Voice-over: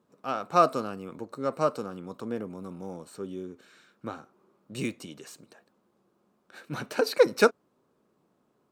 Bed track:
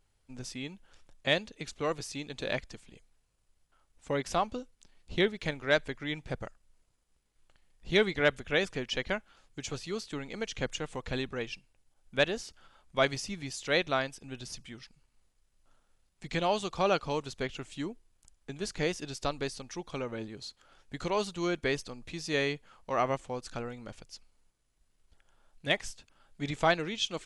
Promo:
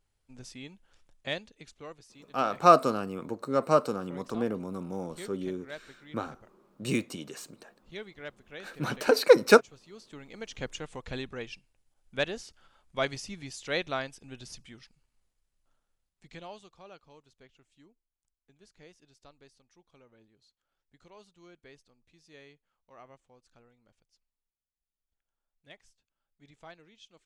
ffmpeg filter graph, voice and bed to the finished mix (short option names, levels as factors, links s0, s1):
-filter_complex "[0:a]adelay=2100,volume=1.41[s0];[1:a]volume=2.66,afade=t=out:st=1.15:d=0.88:silence=0.266073,afade=t=in:st=9.85:d=0.82:silence=0.211349,afade=t=out:st=14.55:d=2.26:silence=0.0944061[s1];[s0][s1]amix=inputs=2:normalize=0"